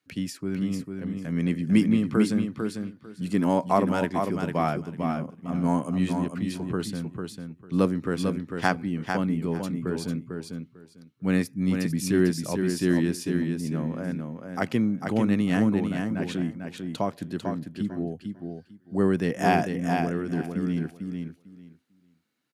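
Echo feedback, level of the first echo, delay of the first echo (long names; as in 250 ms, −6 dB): 18%, −5.5 dB, 448 ms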